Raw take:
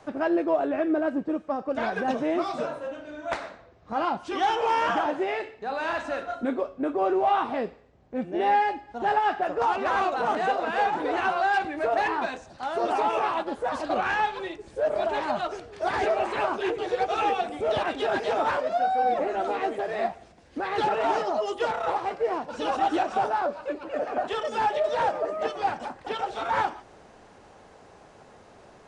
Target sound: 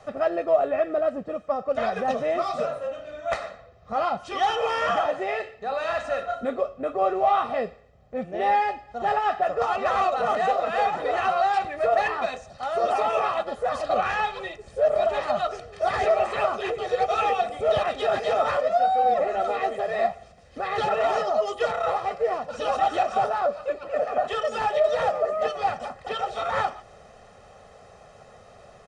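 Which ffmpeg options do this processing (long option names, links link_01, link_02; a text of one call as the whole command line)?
ffmpeg -i in.wav -af "aecho=1:1:1.6:0.75" out.wav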